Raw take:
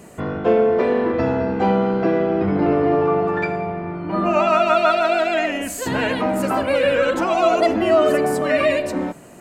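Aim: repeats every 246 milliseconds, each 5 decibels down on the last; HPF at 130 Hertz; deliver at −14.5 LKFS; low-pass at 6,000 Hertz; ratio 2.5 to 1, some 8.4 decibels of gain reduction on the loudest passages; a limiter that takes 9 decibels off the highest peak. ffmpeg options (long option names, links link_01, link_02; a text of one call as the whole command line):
ffmpeg -i in.wav -af "highpass=130,lowpass=6000,acompressor=threshold=-25dB:ratio=2.5,alimiter=limit=-22dB:level=0:latency=1,aecho=1:1:246|492|738|984|1230|1476|1722:0.562|0.315|0.176|0.0988|0.0553|0.031|0.0173,volume=13.5dB" out.wav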